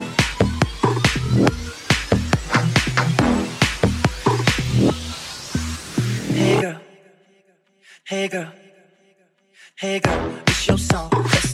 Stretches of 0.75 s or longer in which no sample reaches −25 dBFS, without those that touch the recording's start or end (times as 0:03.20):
0:06.73–0:08.09
0:08.44–0:09.80